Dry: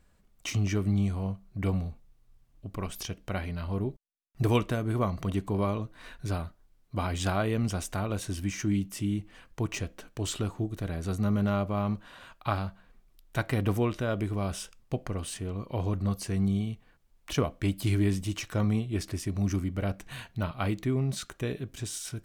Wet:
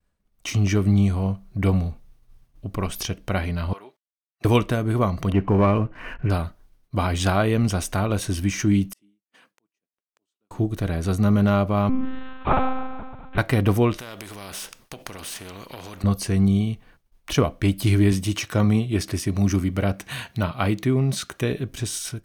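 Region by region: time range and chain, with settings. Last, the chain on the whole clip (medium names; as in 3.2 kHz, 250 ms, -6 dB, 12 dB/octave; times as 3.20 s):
3.73–4.45 s: high-pass 1.2 kHz + treble shelf 5.8 kHz -11.5 dB
5.32–6.30 s: brick-wall FIR low-pass 3.1 kHz + waveshaping leveller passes 1
8.93–10.51 s: high-pass 190 Hz 24 dB/octave + inverted gate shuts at -40 dBFS, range -36 dB + compression 10:1, threshold -56 dBFS
11.89–13.38 s: Bessel low-pass 2.4 kHz + flutter echo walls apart 8 m, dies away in 1.5 s + monotone LPC vocoder at 8 kHz 260 Hz
13.98–16.04 s: bass shelf 130 Hz -9.5 dB + compression, threshold -34 dBFS + spectrum-flattening compressor 2:1
18.12–21.51 s: high-pass 76 Hz + tape noise reduction on one side only encoder only
whole clip: band-stop 7.4 kHz, Q 11; expander -57 dBFS; level rider gain up to 11 dB; trim -2.5 dB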